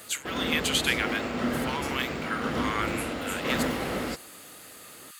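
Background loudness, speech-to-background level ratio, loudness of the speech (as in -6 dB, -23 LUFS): -31.0 LUFS, 0.0 dB, -31.0 LUFS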